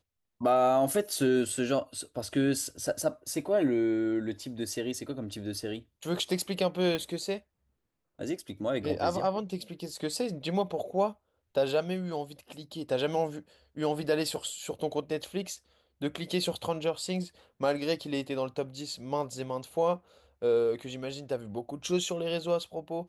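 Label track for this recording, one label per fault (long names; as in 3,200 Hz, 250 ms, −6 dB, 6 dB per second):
6.950000	6.950000	click −17 dBFS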